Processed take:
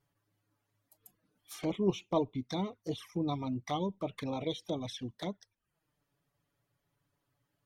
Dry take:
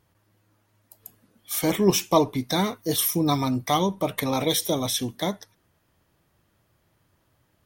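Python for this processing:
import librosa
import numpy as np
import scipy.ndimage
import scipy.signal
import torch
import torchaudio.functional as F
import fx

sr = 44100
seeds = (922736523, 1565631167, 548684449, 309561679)

y = fx.dereverb_blind(x, sr, rt60_s=0.5)
y = fx.env_lowpass_down(y, sr, base_hz=2900.0, full_db=-21.5)
y = fx.env_flanger(y, sr, rest_ms=7.2, full_db=-22.5)
y = y * 10.0 ** (-9.0 / 20.0)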